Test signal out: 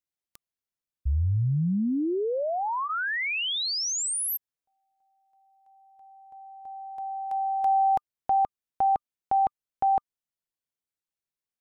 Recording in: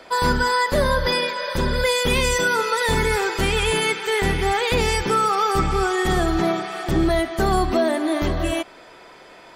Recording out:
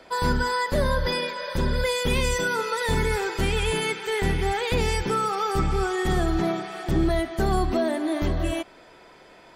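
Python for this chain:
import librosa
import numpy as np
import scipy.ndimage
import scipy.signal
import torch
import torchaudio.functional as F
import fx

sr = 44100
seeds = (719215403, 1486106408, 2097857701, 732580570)

y = fx.low_shelf(x, sr, hz=290.0, db=5.5)
y = fx.notch(y, sr, hz=1200.0, q=26.0)
y = F.gain(torch.from_numpy(y), -6.0).numpy()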